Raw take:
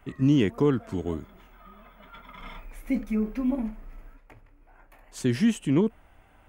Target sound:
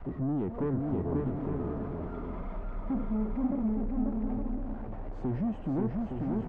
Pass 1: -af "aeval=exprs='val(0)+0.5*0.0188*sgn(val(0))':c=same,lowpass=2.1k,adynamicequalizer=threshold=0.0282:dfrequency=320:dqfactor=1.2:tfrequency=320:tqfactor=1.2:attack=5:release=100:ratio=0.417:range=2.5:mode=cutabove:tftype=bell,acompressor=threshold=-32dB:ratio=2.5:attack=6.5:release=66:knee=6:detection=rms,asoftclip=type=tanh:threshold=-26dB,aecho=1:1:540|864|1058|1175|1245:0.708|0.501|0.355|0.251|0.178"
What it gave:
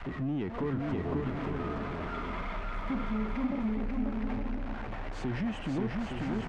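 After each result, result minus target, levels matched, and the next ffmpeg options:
2000 Hz band +14.0 dB; compressor: peak gain reduction +3.5 dB
-af "aeval=exprs='val(0)+0.5*0.0188*sgn(val(0))':c=same,lowpass=670,adynamicequalizer=threshold=0.0282:dfrequency=320:dqfactor=1.2:tfrequency=320:tqfactor=1.2:attack=5:release=100:ratio=0.417:range=2.5:mode=cutabove:tftype=bell,acompressor=threshold=-32dB:ratio=2.5:attack=6.5:release=66:knee=6:detection=rms,asoftclip=type=tanh:threshold=-26dB,aecho=1:1:540|864|1058|1175|1245:0.708|0.501|0.355|0.251|0.178"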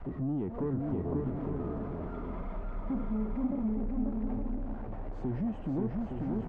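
compressor: peak gain reduction +3.5 dB
-af "aeval=exprs='val(0)+0.5*0.0188*sgn(val(0))':c=same,lowpass=670,adynamicequalizer=threshold=0.0282:dfrequency=320:dqfactor=1.2:tfrequency=320:tqfactor=1.2:attack=5:release=100:ratio=0.417:range=2.5:mode=cutabove:tftype=bell,acompressor=threshold=-26dB:ratio=2.5:attack=6.5:release=66:knee=6:detection=rms,asoftclip=type=tanh:threshold=-26dB,aecho=1:1:540|864|1058|1175|1245:0.708|0.501|0.355|0.251|0.178"

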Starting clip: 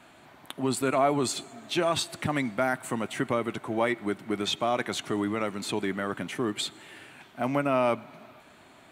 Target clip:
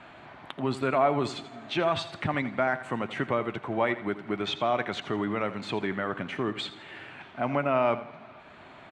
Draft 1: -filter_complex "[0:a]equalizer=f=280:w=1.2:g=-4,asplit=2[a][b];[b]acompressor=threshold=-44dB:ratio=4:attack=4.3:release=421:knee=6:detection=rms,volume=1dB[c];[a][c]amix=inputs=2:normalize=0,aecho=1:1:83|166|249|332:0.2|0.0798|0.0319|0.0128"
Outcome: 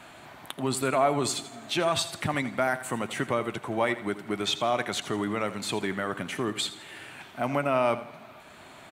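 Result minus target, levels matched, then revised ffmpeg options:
4000 Hz band +4.0 dB
-filter_complex "[0:a]lowpass=3k,equalizer=f=280:w=1.2:g=-4,asplit=2[a][b];[b]acompressor=threshold=-44dB:ratio=4:attack=4.3:release=421:knee=6:detection=rms,volume=1dB[c];[a][c]amix=inputs=2:normalize=0,aecho=1:1:83|166|249|332:0.2|0.0798|0.0319|0.0128"

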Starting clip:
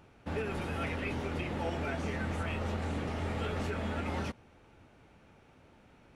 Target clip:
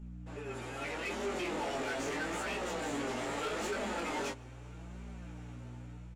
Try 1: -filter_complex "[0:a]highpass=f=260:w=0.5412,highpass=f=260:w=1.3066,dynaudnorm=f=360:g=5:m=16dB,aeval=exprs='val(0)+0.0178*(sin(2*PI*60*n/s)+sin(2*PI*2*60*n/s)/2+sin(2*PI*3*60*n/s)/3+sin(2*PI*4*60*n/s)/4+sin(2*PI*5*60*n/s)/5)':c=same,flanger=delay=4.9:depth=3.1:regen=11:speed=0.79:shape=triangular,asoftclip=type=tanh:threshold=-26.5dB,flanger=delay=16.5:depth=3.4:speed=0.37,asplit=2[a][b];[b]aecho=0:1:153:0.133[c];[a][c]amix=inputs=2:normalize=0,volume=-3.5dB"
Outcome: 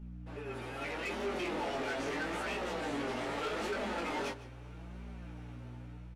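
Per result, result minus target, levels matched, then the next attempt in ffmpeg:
echo-to-direct +11 dB; 8000 Hz band -6.0 dB
-filter_complex "[0:a]highpass=f=260:w=0.5412,highpass=f=260:w=1.3066,dynaudnorm=f=360:g=5:m=16dB,aeval=exprs='val(0)+0.0178*(sin(2*PI*60*n/s)+sin(2*PI*2*60*n/s)/2+sin(2*PI*3*60*n/s)/3+sin(2*PI*4*60*n/s)/4+sin(2*PI*5*60*n/s)/5)':c=same,flanger=delay=4.9:depth=3.1:regen=11:speed=0.79:shape=triangular,asoftclip=type=tanh:threshold=-26.5dB,flanger=delay=16.5:depth=3.4:speed=0.37,asplit=2[a][b];[b]aecho=0:1:153:0.0376[c];[a][c]amix=inputs=2:normalize=0,volume=-3.5dB"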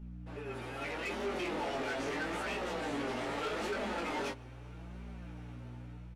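8000 Hz band -6.0 dB
-filter_complex "[0:a]highpass=f=260:w=0.5412,highpass=f=260:w=1.3066,equalizer=f=7.2k:t=o:w=0.37:g=12.5,dynaudnorm=f=360:g=5:m=16dB,aeval=exprs='val(0)+0.0178*(sin(2*PI*60*n/s)+sin(2*PI*2*60*n/s)/2+sin(2*PI*3*60*n/s)/3+sin(2*PI*4*60*n/s)/4+sin(2*PI*5*60*n/s)/5)':c=same,flanger=delay=4.9:depth=3.1:regen=11:speed=0.79:shape=triangular,asoftclip=type=tanh:threshold=-26.5dB,flanger=delay=16.5:depth=3.4:speed=0.37,asplit=2[a][b];[b]aecho=0:1:153:0.0376[c];[a][c]amix=inputs=2:normalize=0,volume=-3.5dB"

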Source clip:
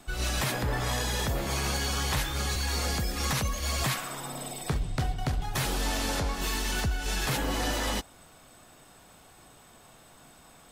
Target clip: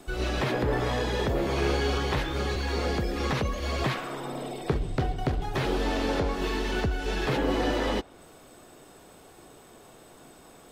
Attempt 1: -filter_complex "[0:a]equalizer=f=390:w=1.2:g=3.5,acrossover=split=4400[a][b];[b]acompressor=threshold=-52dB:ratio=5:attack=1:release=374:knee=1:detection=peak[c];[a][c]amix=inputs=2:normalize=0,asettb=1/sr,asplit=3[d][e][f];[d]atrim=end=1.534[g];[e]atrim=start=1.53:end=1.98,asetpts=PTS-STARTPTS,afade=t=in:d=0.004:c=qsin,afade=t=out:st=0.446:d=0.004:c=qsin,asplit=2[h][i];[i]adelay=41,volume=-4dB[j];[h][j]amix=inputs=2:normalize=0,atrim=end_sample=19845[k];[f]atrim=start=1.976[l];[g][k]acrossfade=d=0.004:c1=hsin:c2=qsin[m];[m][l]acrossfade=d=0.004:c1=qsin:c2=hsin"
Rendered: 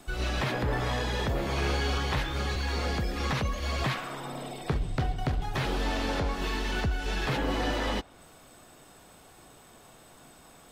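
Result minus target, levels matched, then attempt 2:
500 Hz band -3.5 dB
-filter_complex "[0:a]equalizer=f=390:w=1.2:g=10.5,acrossover=split=4400[a][b];[b]acompressor=threshold=-52dB:ratio=5:attack=1:release=374:knee=1:detection=peak[c];[a][c]amix=inputs=2:normalize=0,asettb=1/sr,asplit=3[d][e][f];[d]atrim=end=1.534[g];[e]atrim=start=1.53:end=1.98,asetpts=PTS-STARTPTS,afade=t=in:d=0.004:c=qsin,afade=t=out:st=0.446:d=0.004:c=qsin,asplit=2[h][i];[i]adelay=41,volume=-4dB[j];[h][j]amix=inputs=2:normalize=0,atrim=end_sample=19845[k];[f]atrim=start=1.976[l];[g][k]acrossfade=d=0.004:c1=hsin:c2=qsin[m];[m][l]acrossfade=d=0.004:c1=qsin:c2=hsin"

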